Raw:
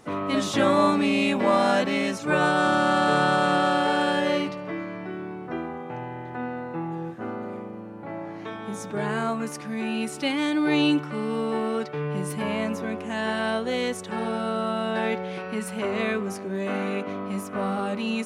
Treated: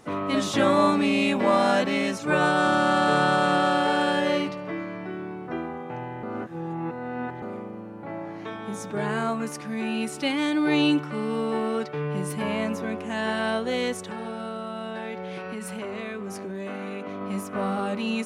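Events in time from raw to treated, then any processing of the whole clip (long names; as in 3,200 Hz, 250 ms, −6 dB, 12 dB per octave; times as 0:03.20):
0:06.23–0:07.42: reverse
0:14.09–0:17.21: downward compressor 5 to 1, threshold −30 dBFS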